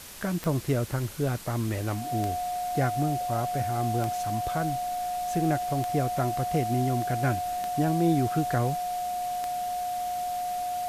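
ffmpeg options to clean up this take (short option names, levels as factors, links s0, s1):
-af "adeclick=t=4,bandreject=f=720:w=30,afwtdn=0.0071"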